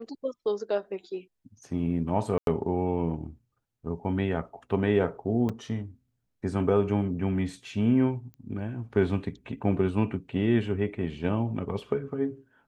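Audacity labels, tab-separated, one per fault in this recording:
2.380000	2.470000	gap 92 ms
5.490000	5.500000	gap 5.4 ms
8.340000	8.340000	pop -33 dBFS

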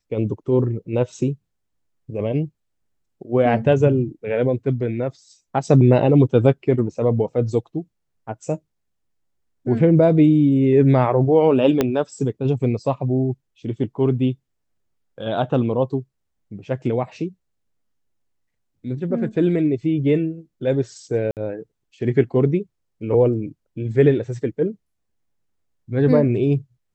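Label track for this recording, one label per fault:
11.810000	11.810000	pop -5 dBFS
21.310000	21.370000	gap 58 ms

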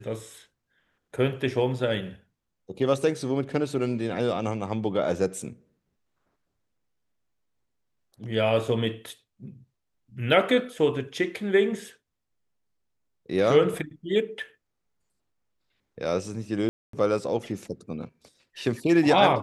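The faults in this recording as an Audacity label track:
16.690000	16.930000	gap 0.243 s

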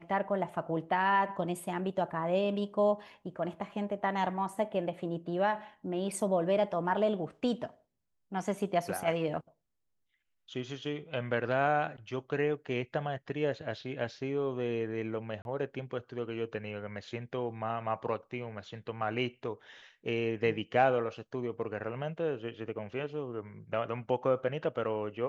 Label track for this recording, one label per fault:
15.420000	15.450000	gap 31 ms

